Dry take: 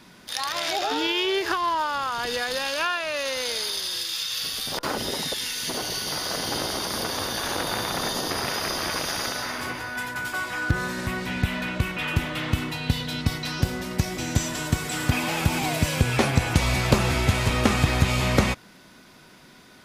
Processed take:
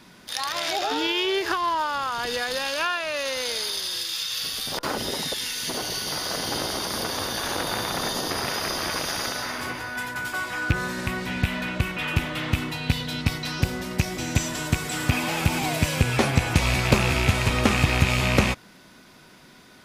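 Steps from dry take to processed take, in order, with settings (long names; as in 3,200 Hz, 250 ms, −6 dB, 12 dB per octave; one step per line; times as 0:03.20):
loose part that buzzes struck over −21 dBFS, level −13 dBFS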